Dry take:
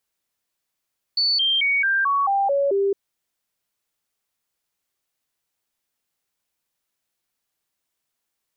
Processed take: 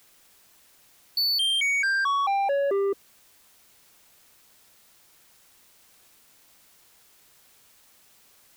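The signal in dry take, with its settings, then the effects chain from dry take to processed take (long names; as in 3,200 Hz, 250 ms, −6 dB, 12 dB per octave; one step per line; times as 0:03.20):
stepped sweep 4,480 Hz down, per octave 2, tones 8, 0.22 s, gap 0.00 s −17 dBFS
reverb reduction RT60 0.59 s
in parallel at −10 dB: bit-depth reduction 8 bits, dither triangular
on the sum: soft clipping −22 dBFS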